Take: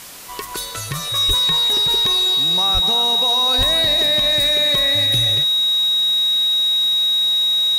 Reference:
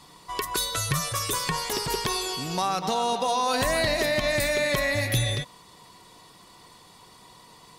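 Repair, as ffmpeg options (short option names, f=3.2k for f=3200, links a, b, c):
-filter_complex "[0:a]bandreject=f=3.8k:w=30,asplit=3[a][b][c];[a]afade=t=out:st=1.27:d=0.02[d];[b]highpass=f=140:w=0.5412,highpass=f=140:w=1.3066,afade=t=in:st=1.27:d=0.02,afade=t=out:st=1.39:d=0.02[e];[c]afade=t=in:st=1.39:d=0.02[f];[d][e][f]amix=inputs=3:normalize=0,asplit=3[g][h][i];[g]afade=t=out:st=2.73:d=0.02[j];[h]highpass=f=140:w=0.5412,highpass=f=140:w=1.3066,afade=t=in:st=2.73:d=0.02,afade=t=out:st=2.85:d=0.02[k];[i]afade=t=in:st=2.85:d=0.02[l];[j][k][l]amix=inputs=3:normalize=0,asplit=3[m][n][o];[m]afade=t=out:st=3.57:d=0.02[p];[n]highpass=f=140:w=0.5412,highpass=f=140:w=1.3066,afade=t=in:st=3.57:d=0.02,afade=t=out:st=3.69:d=0.02[q];[o]afade=t=in:st=3.69:d=0.02[r];[p][q][r]amix=inputs=3:normalize=0,afwtdn=0.016"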